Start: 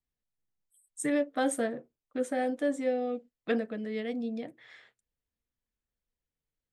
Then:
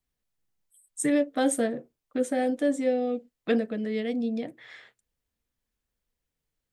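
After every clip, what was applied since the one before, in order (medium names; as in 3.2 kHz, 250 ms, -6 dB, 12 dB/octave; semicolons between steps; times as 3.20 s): dynamic bell 1.2 kHz, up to -6 dB, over -44 dBFS, Q 0.7; trim +6 dB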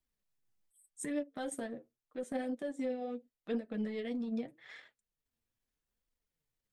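transient shaper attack -12 dB, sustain -8 dB; compression, threshold -32 dBFS, peak gain reduction 11 dB; flange 0.82 Hz, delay 3 ms, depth 6.8 ms, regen +38%; trim +1 dB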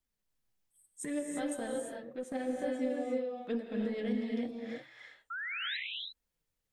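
painted sound rise, 5.30–5.77 s, 1.3–4.1 kHz -39 dBFS; gated-style reverb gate 370 ms rising, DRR 0.5 dB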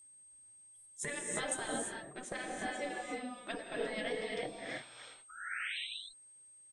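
spectral gate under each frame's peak -10 dB weak; resampled via 22.05 kHz; whistle 8.4 kHz -64 dBFS; trim +7.5 dB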